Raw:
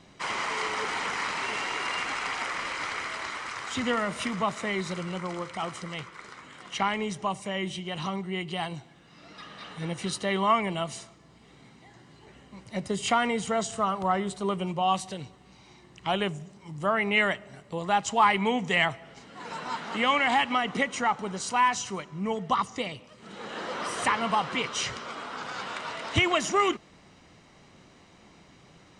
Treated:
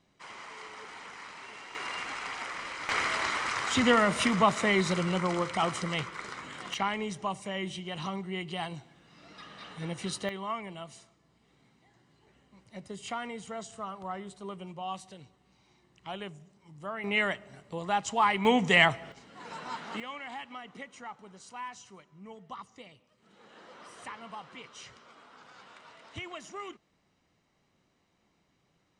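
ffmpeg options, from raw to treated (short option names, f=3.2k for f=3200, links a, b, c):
-af "asetnsamples=n=441:p=0,asendcmd='1.75 volume volume -6dB;2.89 volume volume 4.5dB;6.74 volume volume -3.5dB;10.29 volume volume -12dB;17.04 volume volume -4dB;18.45 volume volume 3dB;19.12 volume volume -5dB;20 volume volume -17.5dB',volume=-15dB"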